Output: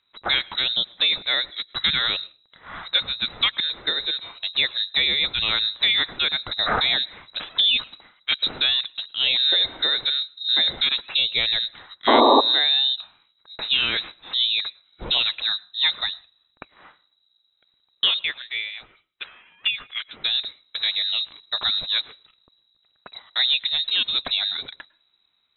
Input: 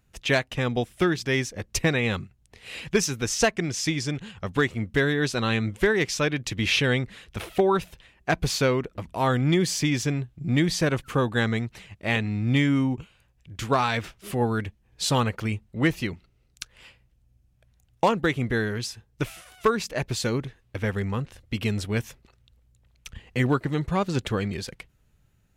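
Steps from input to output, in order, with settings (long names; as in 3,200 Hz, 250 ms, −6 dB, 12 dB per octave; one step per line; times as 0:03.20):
0:18.19–0:20.24: three-way crossover with the lows and the highs turned down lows −20 dB, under 470 Hz, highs −16 dB, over 2,400 Hz
voice inversion scrambler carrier 3,900 Hz
in parallel at −0.5 dB: brickwall limiter −14.5 dBFS, peak gain reduction 7 dB
0:12.07–0:12.41: on the sum: sound drawn into the spectrogram noise 230–1,200 Hz −11 dBFS
on a send at −24 dB: convolution reverb RT60 0.35 s, pre-delay 100 ms
on the sum: low-pass that shuts in the quiet parts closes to 2,400 Hz, open at −18 dBFS
level −3.5 dB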